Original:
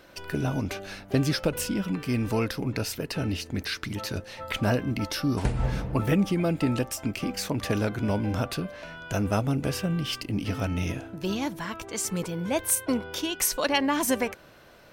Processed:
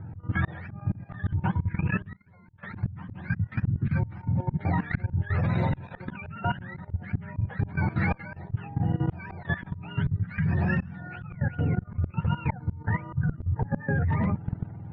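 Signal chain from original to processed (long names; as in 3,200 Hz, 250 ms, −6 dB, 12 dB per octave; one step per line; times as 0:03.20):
frequency axis turned over on the octave scale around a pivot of 690 Hz
low-pass filter 1,900 Hz 24 dB per octave
low shelf with overshoot 210 Hz +10.5 dB, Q 1.5
notch filter 1,100 Hz, Q 7.6
in parallel at −2 dB: downward compressor 4 to 1, threshold −28 dBFS, peak gain reduction 19 dB
on the sum: volume swells 557 ms
0:02.10–0:02.77: gate with flip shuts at −29 dBFS, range −29 dB
harmonic generator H 5 −13 dB, 7 −26 dB, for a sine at −8.5 dBFS
output level in coarse steps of 15 dB
level +6 dB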